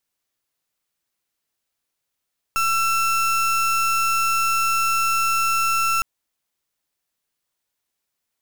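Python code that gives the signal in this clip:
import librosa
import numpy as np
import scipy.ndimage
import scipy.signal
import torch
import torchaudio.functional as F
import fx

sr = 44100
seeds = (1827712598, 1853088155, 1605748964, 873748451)

y = fx.pulse(sr, length_s=3.46, hz=1340.0, level_db=-20.0, duty_pct=32)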